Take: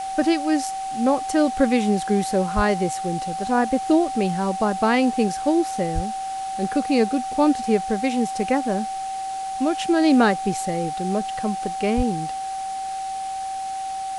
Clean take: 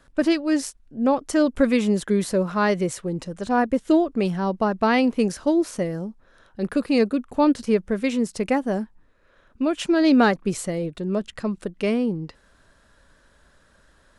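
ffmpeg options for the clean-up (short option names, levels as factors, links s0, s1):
-filter_complex "[0:a]bandreject=f=770:w=30,asplit=3[s0][s1][s2];[s0]afade=t=out:st=2.55:d=0.02[s3];[s1]highpass=f=140:w=0.5412,highpass=f=140:w=1.3066,afade=t=in:st=2.55:d=0.02,afade=t=out:st=2.67:d=0.02[s4];[s2]afade=t=in:st=2.67:d=0.02[s5];[s3][s4][s5]amix=inputs=3:normalize=0,asplit=3[s6][s7][s8];[s6]afade=t=out:st=5.94:d=0.02[s9];[s7]highpass=f=140:w=0.5412,highpass=f=140:w=1.3066,afade=t=in:st=5.94:d=0.02,afade=t=out:st=6.06:d=0.02[s10];[s8]afade=t=in:st=6.06:d=0.02[s11];[s9][s10][s11]amix=inputs=3:normalize=0,asplit=3[s12][s13][s14];[s12]afade=t=out:st=11.96:d=0.02[s15];[s13]highpass=f=140:w=0.5412,highpass=f=140:w=1.3066,afade=t=in:st=11.96:d=0.02,afade=t=out:st=12.08:d=0.02[s16];[s14]afade=t=in:st=12.08:d=0.02[s17];[s15][s16][s17]amix=inputs=3:normalize=0,afwtdn=0.01"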